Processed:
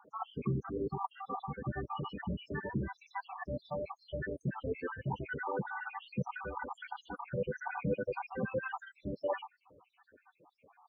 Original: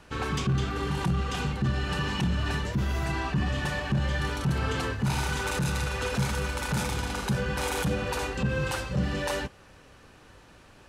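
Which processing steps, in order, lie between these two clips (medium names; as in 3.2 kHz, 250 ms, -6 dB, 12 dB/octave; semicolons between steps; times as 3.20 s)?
random holes in the spectrogram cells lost 69%; band-pass filter 650 Hz, Q 0.57; loudest bins only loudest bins 16; trim +1 dB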